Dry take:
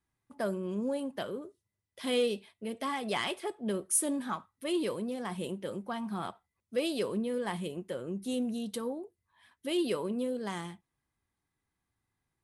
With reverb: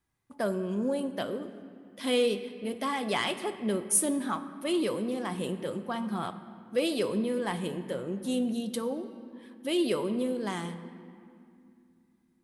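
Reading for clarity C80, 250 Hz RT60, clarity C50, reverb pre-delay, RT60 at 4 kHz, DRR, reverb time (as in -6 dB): 12.5 dB, 3.5 s, 11.5 dB, 3 ms, 1.6 s, 10.5 dB, 2.4 s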